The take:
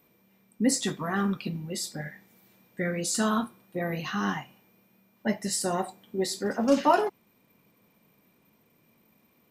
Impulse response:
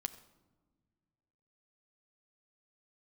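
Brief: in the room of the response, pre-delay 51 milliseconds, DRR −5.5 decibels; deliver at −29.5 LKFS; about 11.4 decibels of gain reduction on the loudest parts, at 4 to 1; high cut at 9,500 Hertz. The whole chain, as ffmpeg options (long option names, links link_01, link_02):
-filter_complex "[0:a]lowpass=9500,acompressor=threshold=-30dB:ratio=4,asplit=2[link_01][link_02];[1:a]atrim=start_sample=2205,adelay=51[link_03];[link_02][link_03]afir=irnorm=-1:irlink=0,volume=6.5dB[link_04];[link_01][link_04]amix=inputs=2:normalize=0,volume=-1dB"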